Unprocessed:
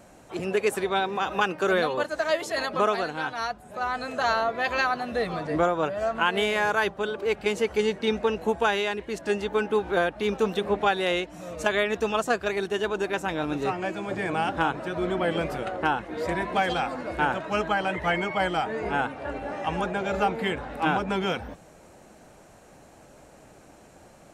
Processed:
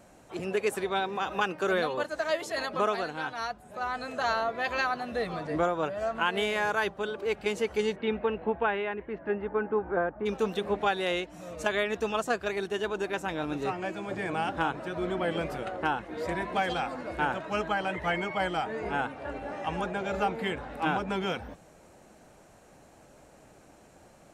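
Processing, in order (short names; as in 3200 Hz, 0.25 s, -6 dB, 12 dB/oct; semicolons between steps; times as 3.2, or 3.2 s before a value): 7.95–10.25 LPF 3200 Hz -> 1500 Hz 24 dB/oct; gain -4 dB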